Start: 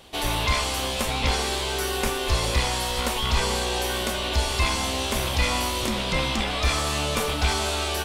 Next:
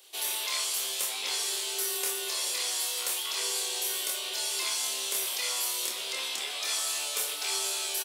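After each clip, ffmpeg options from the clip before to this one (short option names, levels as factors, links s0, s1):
-filter_complex "[0:a]highpass=f=380:t=q:w=4,aderivative,asplit=2[s0][s1];[s1]adelay=26,volume=0.631[s2];[s0][s2]amix=inputs=2:normalize=0"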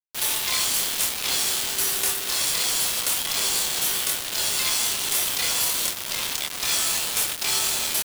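-af "lowshelf=f=450:g=-10,acrusher=bits=4:mix=0:aa=0.000001,volume=2.11"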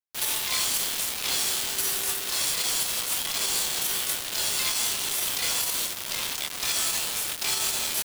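-af "alimiter=limit=0.168:level=0:latency=1:release=33,volume=0.75"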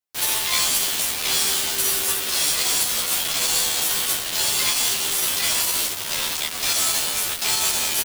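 -filter_complex "[0:a]asplit=2[s0][s1];[s1]adelay=11.9,afreqshift=-0.27[s2];[s0][s2]amix=inputs=2:normalize=1,volume=2.66"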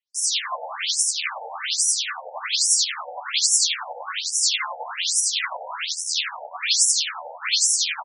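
-af "tremolo=f=11:d=0.47,afftfilt=real='re*between(b*sr/1024,630*pow(7600/630,0.5+0.5*sin(2*PI*1.2*pts/sr))/1.41,630*pow(7600/630,0.5+0.5*sin(2*PI*1.2*pts/sr))*1.41)':imag='im*between(b*sr/1024,630*pow(7600/630,0.5+0.5*sin(2*PI*1.2*pts/sr))/1.41,630*pow(7600/630,0.5+0.5*sin(2*PI*1.2*pts/sr))*1.41)':win_size=1024:overlap=0.75,volume=2.51"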